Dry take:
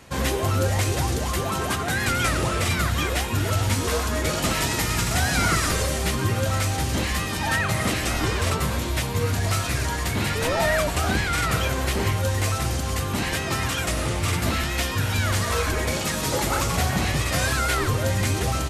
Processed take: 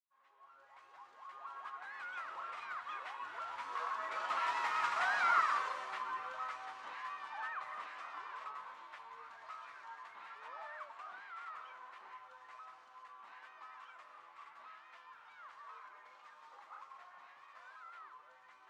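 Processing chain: opening faded in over 2.48 s; Doppler pass-by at 4.98, 11 m/s, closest 5.8 m; in parallel at -3 dB: compressor, threshold -41 dBFS, peak gain reduction 20.5 dB; on the sum: ladder band-pass 1200 Hz, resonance 60%; gain +3.5 dB

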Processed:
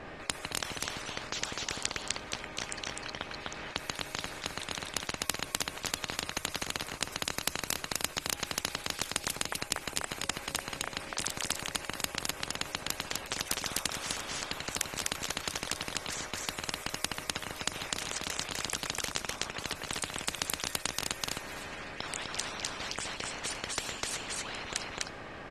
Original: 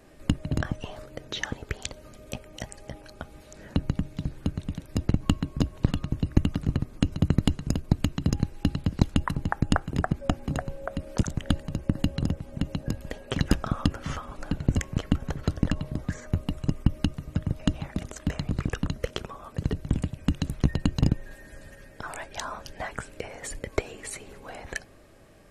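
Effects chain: low-pass opened by the level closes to 2900 Hz, open at -24.5 dBFS; echo 0.252 s -3.5 dB; spectral compressor 10:1; gain -1.5 dB

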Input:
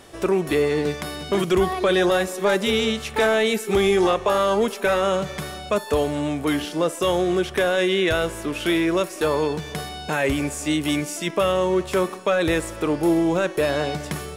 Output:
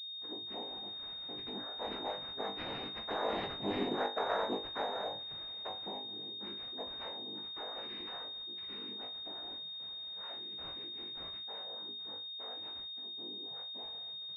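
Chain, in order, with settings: per-bin expansion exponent 2; Doppler pass-by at 3.94, 10 m/s, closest 5.9 m; dynamic EQ 540 Hz, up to +6 dB, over -39 dBFS, Q 1.8; compressor 1.5:1, threshold -43 dBFS, peak gain reduction 10 dB; tilt +4 dB/oct; noise vocoder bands 6; flutter echo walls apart 3.4 m, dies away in 0.28 s; pulse-width modulation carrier 3700 Hz; gain -3 dB

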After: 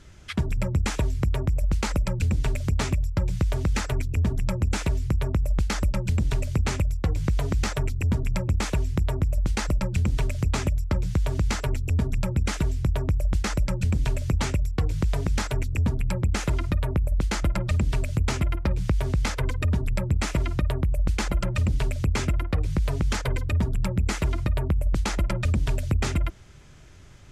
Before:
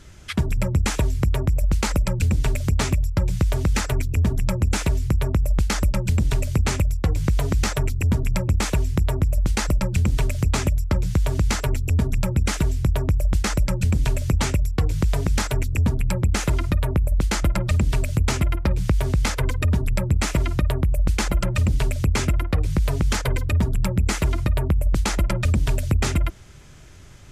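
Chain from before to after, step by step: high shelf 10000 Hz -9 dB; gain -3.5 dB

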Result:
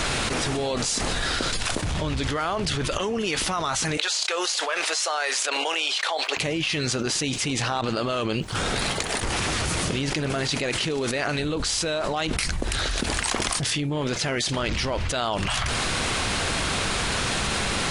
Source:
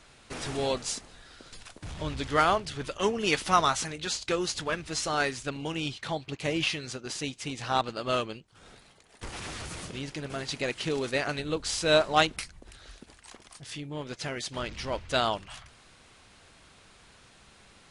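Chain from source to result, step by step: 3.97–6.37 HPF 540 Hz 24 dB/oct; fast leveller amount 100%; gain -7.5 dB

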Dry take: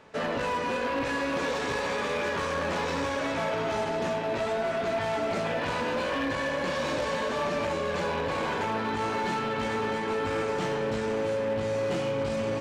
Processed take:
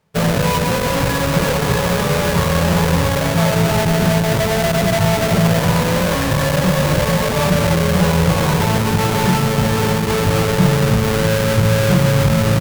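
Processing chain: half-waves squared off; added harmonics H 3 -9 dB, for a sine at -23.5 dBFS; resonant low shelf 210 Hz +6.5 dB, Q 3; gain +8 dB

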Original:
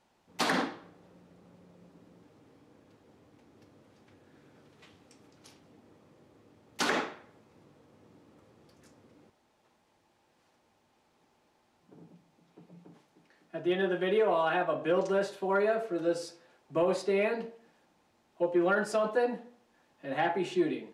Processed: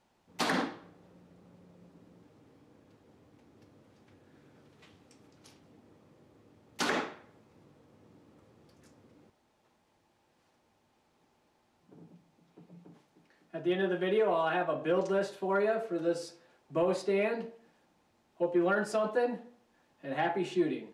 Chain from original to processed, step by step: low shelf 230 Hz +3.5 dB; gain -2 dB

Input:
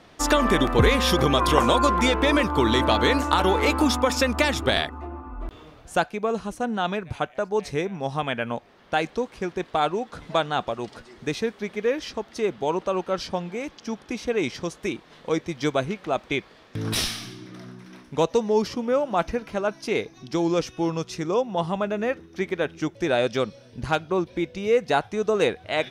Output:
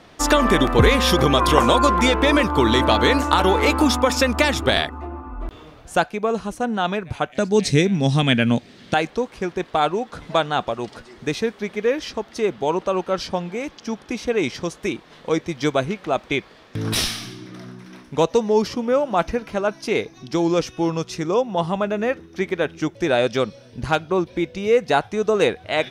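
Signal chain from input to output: 7.32–8.94 graphic EQ 125/250/1000/2000/4000/8000 Hz +10/+10/-6/+4/+9/+11 dB; gain +3.5 dB

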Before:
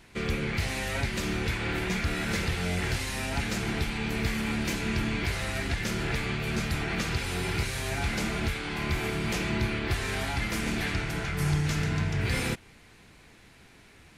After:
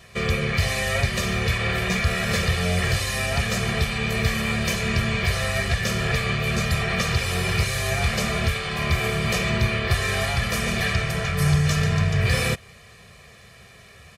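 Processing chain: HPF 63 Hz; comb 1.7 ms, depth 97%; gain +4.5 dB

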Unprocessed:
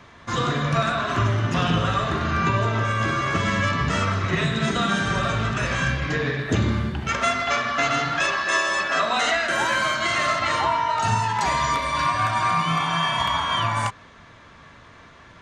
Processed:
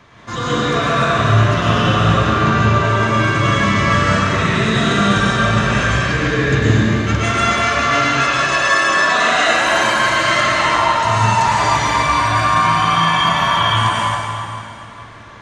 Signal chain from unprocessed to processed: plate-style reverb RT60 2.8 s, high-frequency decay 0.85×, pre-delay 95 ms, DRR -7 dB

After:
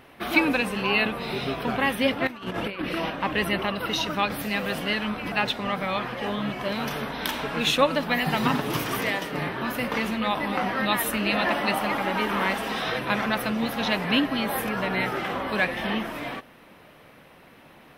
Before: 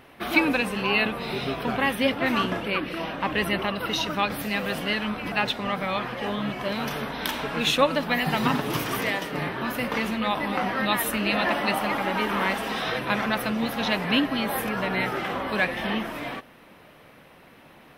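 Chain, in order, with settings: 2.27–3.1 negative-ratio compressor -30 dBFS, ratio -0.5

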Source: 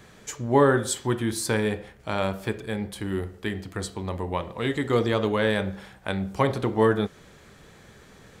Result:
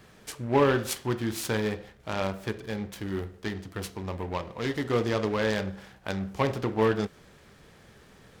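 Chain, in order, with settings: noise-modulated delay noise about 1300 Hz, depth 0.042 ms; gain -3.5 dB

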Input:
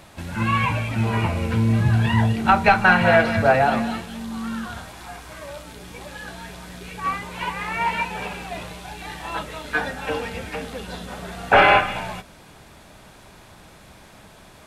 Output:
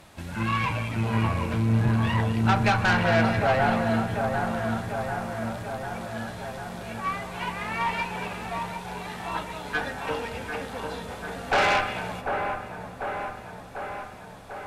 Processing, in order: tube stage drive 15 dB, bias 0.45; dark delay 0.745 s, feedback 67%, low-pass 1500 Hz, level -5 dB; reverb RT60 2.0 s, pre-delay 0.11 s, DRR 16 dB; gain -2.5 dB

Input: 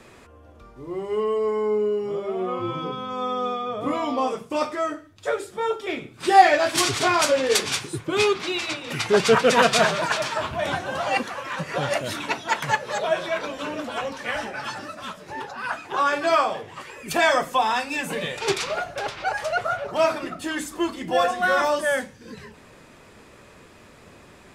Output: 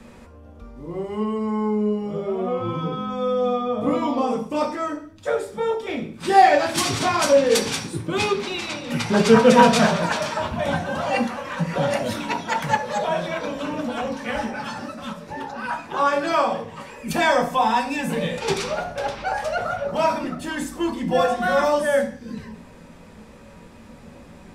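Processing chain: on a send: low shelf 75 Hz +11 dB + reverb RT60 0.45 s, pre-delay 3 ms, DRR 2 dB; on the sum: gain -2 dB

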